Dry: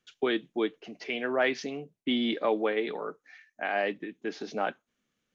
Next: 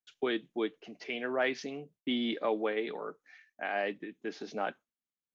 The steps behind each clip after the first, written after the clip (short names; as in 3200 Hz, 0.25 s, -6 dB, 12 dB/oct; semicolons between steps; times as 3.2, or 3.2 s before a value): gate with hold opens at -53 dBFS; gain -4 dB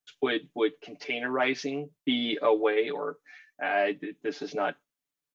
comb 6.9 ms, depth 95%; gain +3 dB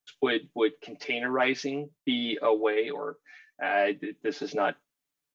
vocal rider 2 s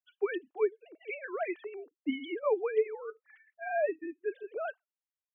sine-wave speech; gain -5.5 dB